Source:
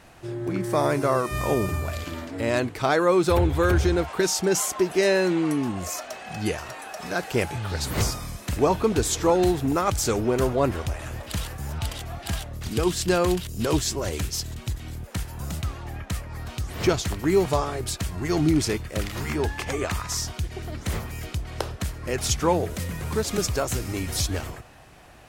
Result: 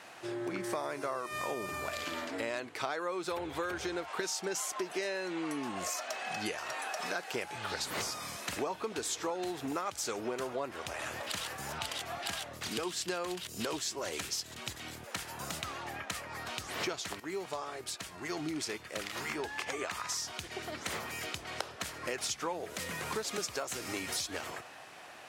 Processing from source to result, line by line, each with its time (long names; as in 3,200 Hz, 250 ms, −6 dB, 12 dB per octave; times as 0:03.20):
0:17.20–0:21.15: fade in, from −13.5 dB
whole clip: meter weighting curve A; downward compressor 6 to 1, threshold −35 dBFS; level +1.5 dB